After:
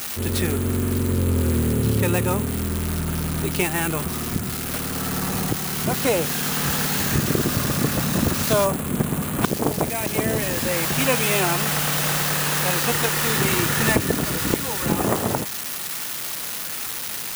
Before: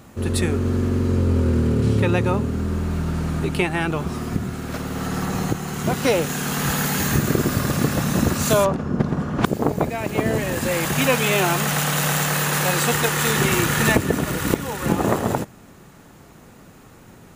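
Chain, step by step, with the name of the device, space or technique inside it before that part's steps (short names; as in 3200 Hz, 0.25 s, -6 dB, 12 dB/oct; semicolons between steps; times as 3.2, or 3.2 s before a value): budget class-D amplifier (switching dead time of 0.096 ms; switching spikes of -10 dBFS); gain -2 dB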